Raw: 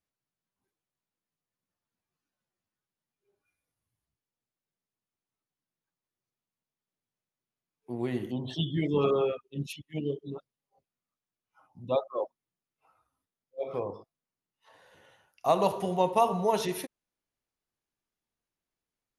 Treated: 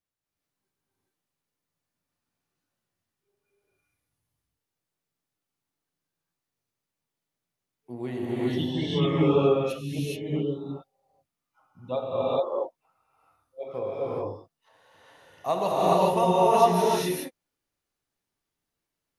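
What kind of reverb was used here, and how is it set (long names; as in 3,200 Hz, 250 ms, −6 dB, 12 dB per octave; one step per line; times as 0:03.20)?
reverb whose tail is shaped and stops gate 450 ms rising, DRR −7.5 dB
level −3 dB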